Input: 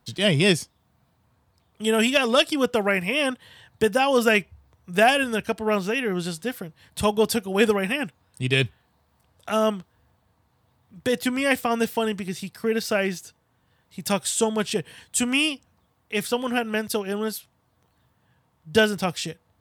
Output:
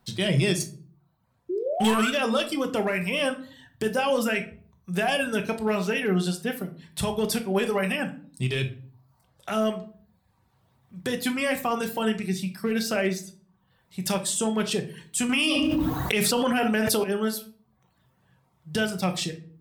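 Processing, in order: reverb removal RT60 0.71 s; 0.6–1.94 sample leveller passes 2; limiter -17.5 dBFS, peak gain reduction 10.5 dB; 1.49–2.1 painted sound rise 340–1600 Hz -29 dBFS; hard clip -18.5 dBFS, distortion -28 dB; shoebox room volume 400 m³, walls furnished, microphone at 1.1 m; 15.29–17.04 fast leveller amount 100%

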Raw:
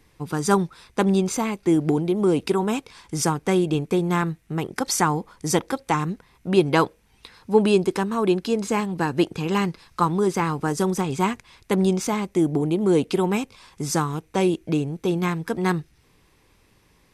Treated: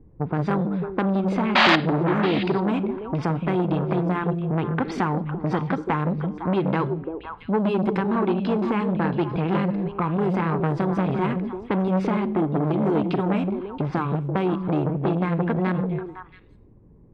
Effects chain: low-pass opened by the level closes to 390 Hz, open at -18 dBFS; dynamic EQ 540 Hz, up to -4 dB, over -32 dBFS, Q 1.2; in parallel at 0 dB: limiter -14.5 dBFS, peak gain reduction 9 dB; on the sum: compressor 4:1, threshold -21 dBFS, peak gain reduction 10 dB; painted sound noise, 1.55–1.76, 550–5000 Hz -12 dBFS; air absorption 430 m; on a send: delay with a stepping band-pass 0.169 s, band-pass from 160 Hz, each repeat 1.4 oct, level -2 dB; on the sum: Schroeder reverb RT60 0.47 s, combs from 33 ms, DRR 17.5 dB; core saturation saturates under 1400 Hz; gain +3.5 dB

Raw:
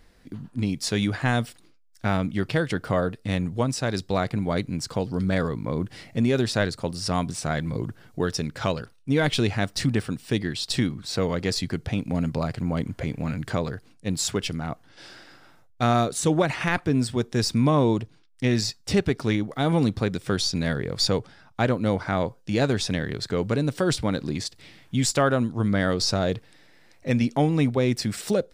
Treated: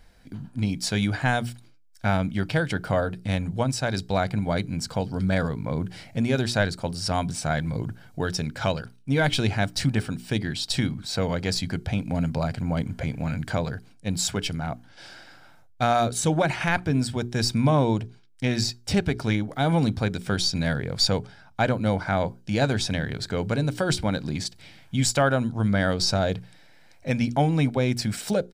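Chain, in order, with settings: notches 60/120/180/240/300/360/420 Hz; comb 1.3 ms, depth 37%

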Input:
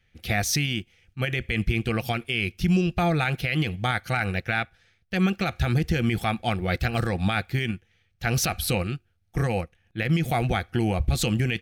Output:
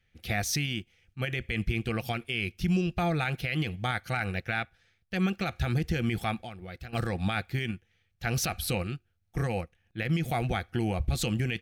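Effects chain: 6.38–6.93 compressor 5:1, threshold -35 dBFS, peak gain reduction 13.5 dB; gain -5 dB

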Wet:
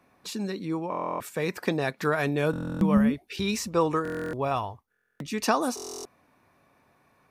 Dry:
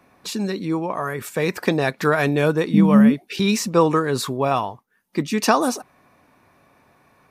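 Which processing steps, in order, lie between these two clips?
2.97–5.43 resonant low shelf 110 Hz +12 dB, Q 1.5; stuck buffer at 0.9/2.51/4.03/4.9/5.75, samples 1024, times 12; gain -7 dB

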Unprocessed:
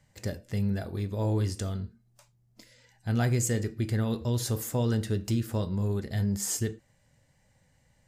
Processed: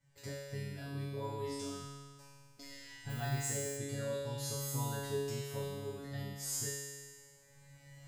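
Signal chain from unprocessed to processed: recorder AGC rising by 11 dB/s; resonator 140 Hz, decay 1.7 s, mix 100%; 3.09–3.76 added noise violet -68 dBFS; gain +14 dB

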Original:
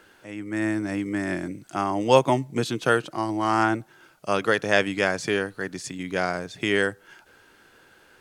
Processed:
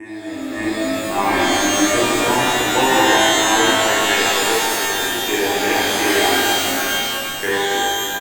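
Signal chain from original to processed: slices in reverse order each 0.323 s, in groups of 3; fixed phaser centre 890 Hz, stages 8; on a send: frequency-shifting echo 0.307 s, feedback 48%, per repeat -54 Hz, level -10 dB; on the sum: AGC gain up to 13.5 dB; notches 50/100 Hz; shimmer reverb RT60 2.2 s, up +12 st, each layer -2 dB, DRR -9.5 dB; gain -11.5 dB

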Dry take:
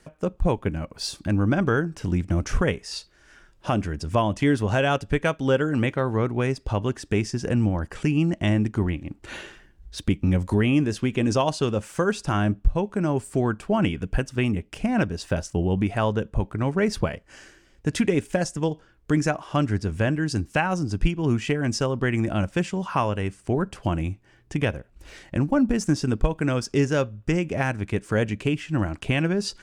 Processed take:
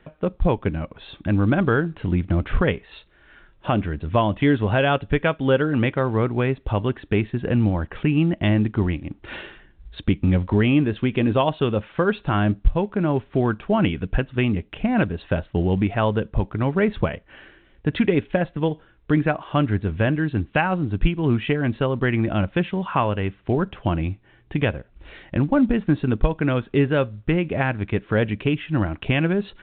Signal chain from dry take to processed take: gain +2.5 dB; µ-law 64 kbps 8000 Hz

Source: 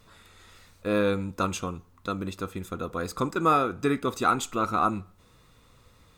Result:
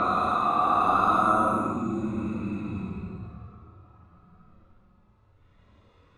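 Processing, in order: Paulstretch 13×, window 0.05 s, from 4.76; low-pass opened by the level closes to 2600 Hz, open at -20 dBFS

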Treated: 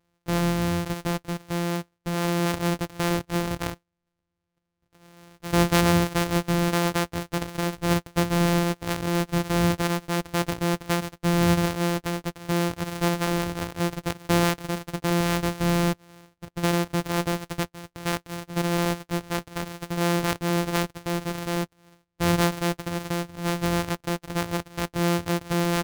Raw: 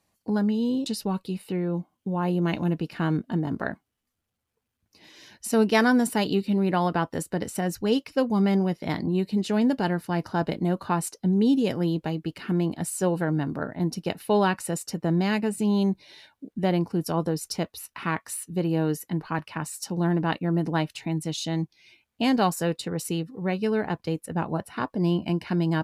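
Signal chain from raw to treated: sample sorter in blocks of 256 samples

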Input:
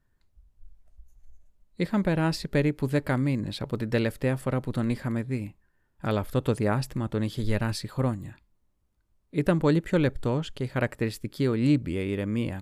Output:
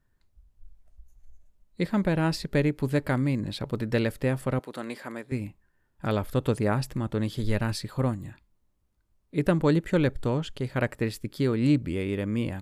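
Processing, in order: 4.59–5.32 HPF 410 Hz 12 dB/oct

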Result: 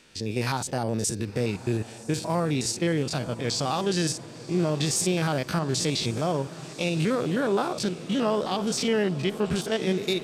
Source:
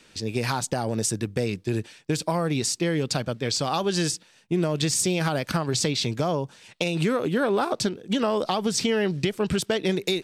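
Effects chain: stepped spectrum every 50 ms; diffused feedback echo 1.057 s, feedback 58%, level -15.5 dB

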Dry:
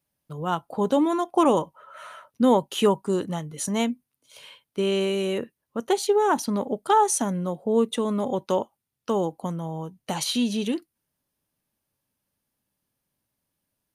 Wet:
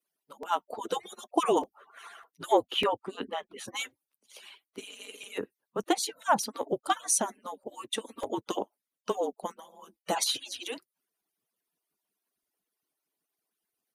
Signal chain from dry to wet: median-filter separation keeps percussive; HPF 280 Hz 12 dB/oct; frequency shift -39 Hz; 2.71–3.68 resonant high shelf 4400 Hz -13 dB, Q 1.5; 9.62–10.28 comb 6 ms, depth 54%; crackling interface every 0.60 s, samples 128, repeat, from 0.43

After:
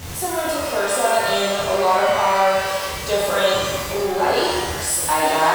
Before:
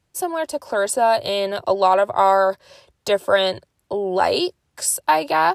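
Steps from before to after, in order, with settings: zero-crossing step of -22.5 dBFS; shimmer reverb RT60 1.4 s, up +12 st, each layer -8 dB, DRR -7 dB; gain -9 dB

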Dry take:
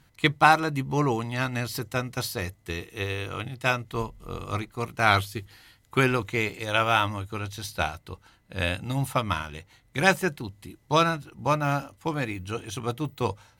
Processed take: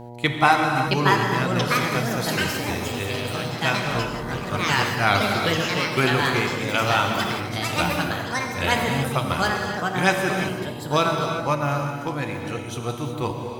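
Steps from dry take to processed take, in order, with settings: non-linear reverb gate 0.4 s flat, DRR 2.5 dB; buzz 120 Hz, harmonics 8, -39 dBFS -3 dB/oct; echoes that change speed 0.721 s, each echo +4 st, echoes 3

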